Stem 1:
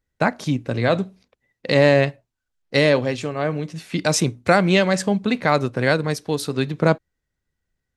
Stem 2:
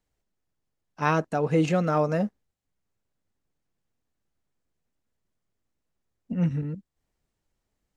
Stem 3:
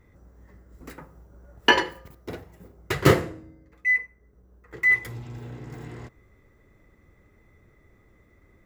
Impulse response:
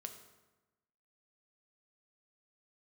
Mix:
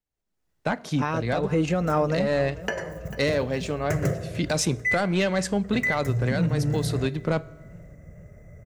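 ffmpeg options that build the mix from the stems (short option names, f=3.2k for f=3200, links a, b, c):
-filter_complex "[0:a]acontrast=75,adelay=450,volume=-17dB,asplit=2[a][b];[b]volume=-9.5dB[c];[1:a]dynaudnorm=f=110:g=5:m=13.5dB,volume=-11.5dB,asplit=2[d][e];[e]volume=-19.5dB[f];[2:a]firequalizer=gain_entry='entry(120,0);entry(280,-16);entry(620,8);entry(880,-15);entry(1600,-5);entry(3700,-22);entry(6000,0);entry(11000,-6)':delay=0.05:min_phase=1,acompressor=threshold=-32dB:ratio=4,equalizer=f=170:w=1.5:g=11,adelay=1000,volume=0.5dB,asplit=3[g][h][i];[h]volume=-3.5dB[j];[i]volume=-18.5dB[k];[3:a]atrim=start_sample=2205[l];[c][j]amix=inputs=2:normalize=0[m];[m][l]afir=irnorm=-1:irlink=0[n];[f][k]amix=inputs=2:normalize=0,aecho=0:1:444|888|1332|1776|2220|2664:1|0.46|0.212|0.0973|0.0448|0.0206[o];[a][d][g][n][o]amix=inputs=5:normalize=0,dynaudnorm=f=120:g=9:m=7dB,alimiter=limit=-14dB:level=0:latency=1:release=377"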